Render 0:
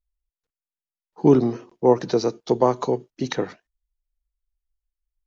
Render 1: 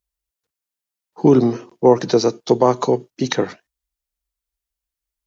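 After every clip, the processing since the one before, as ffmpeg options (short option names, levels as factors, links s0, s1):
-af "highpass=75,highshelf=f=4500:g=4.5,alimiter=level_in=2.11:limit=0.891:release=50:level=0:latency=1,volume=0.891"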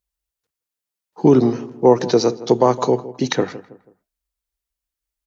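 -filter_complex "[0:a]asplit=2[s0][s1];[s1]adelay=162,lowpass=f=1500:p=1,volume=0.168,asplit=2[s2][s3];[s3]adelay=162,lowpass=f=1500:p=1,volume=0.39,asplit=2[s4][s5];[s5]adelay=162,lowpass=f=1500:p=1,volume=0.39[s6];[s0][s2][s4][s6]amix=inputs=4:normalize=0"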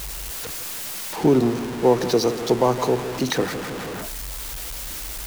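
-af "aeval=exprs='val(0)+0.5*0.106*sgn(val(0))':c=same,volume=0.531"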